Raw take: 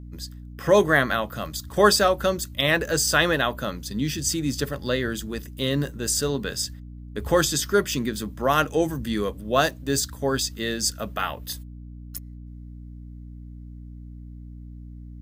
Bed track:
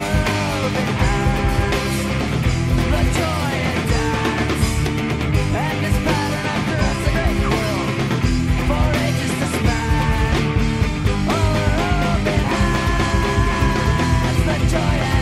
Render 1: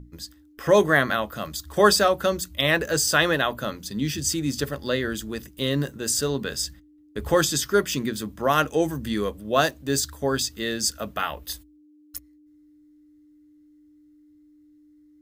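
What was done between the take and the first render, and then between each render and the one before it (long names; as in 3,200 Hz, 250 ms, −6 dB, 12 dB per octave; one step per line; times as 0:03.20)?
mains-hum notches 60/120/180/240 Hz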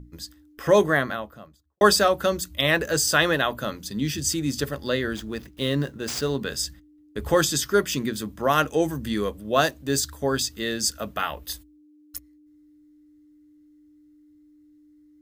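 0:00.66–0:01.81: fade out and dull
0:05.14–0:06.41: running median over 5 samples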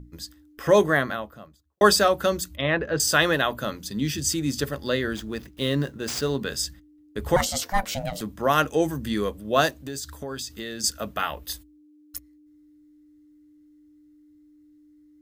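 0:02.56–0:03.00: high-frequency loss of the air 360 metres
0:07.36–0:08.21: ring modulation 390 Hz
0:09.69–0:10.84: downward compressor 5 to 1, threshold −30 dBFS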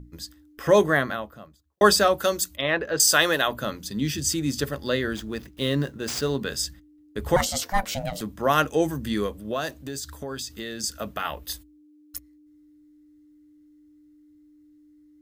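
0:02.18–0:03.48: bass and treble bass −8 dB, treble +6 dB
0:09.26–0:11.25: downward compressor 4 to 1, threshold −24 dBFS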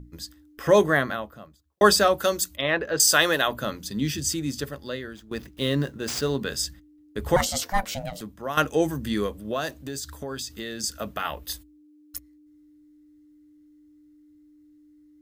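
0:04.04–0:05.31: fade out, to −16 dB
0:07.69–0:08.57: fade out, to −11.5 dB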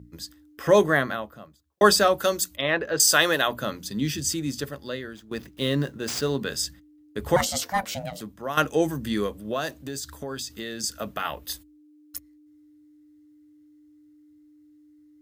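high-pass filter 78 Hz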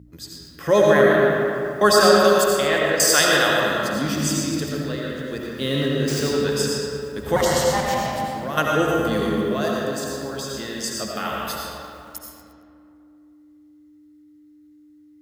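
comb and all-pass reverb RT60 2.7 s, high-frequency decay 0.5×, pre-delay 45 ms, DRR −3 dB
feedback echo at a low word length 115 ms, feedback 55%, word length 7 bits, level −13 dB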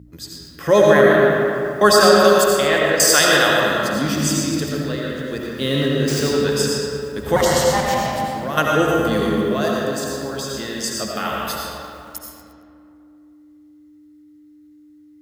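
level +3 dB
brickwall limiter −1 dBFS, peak gain reduction 1.5 dB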